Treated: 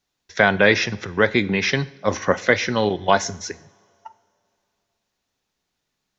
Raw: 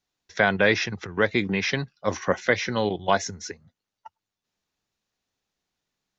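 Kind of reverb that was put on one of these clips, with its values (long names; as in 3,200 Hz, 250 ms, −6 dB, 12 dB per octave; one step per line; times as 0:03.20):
coupled-rooms reverb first 0.58 s, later 2.8 s, from −20 dB, DRR 14.5 dB
level +4.5 dB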